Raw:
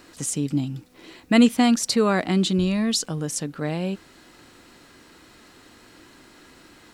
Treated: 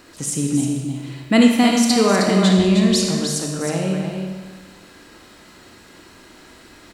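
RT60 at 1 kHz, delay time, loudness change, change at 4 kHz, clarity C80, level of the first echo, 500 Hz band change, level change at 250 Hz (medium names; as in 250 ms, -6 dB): 1.2 s, 312 ms, +4.5 dB, +5.0 dB, 2.0 dB, -6.5 dB, +6.0 dB, +5.0 dB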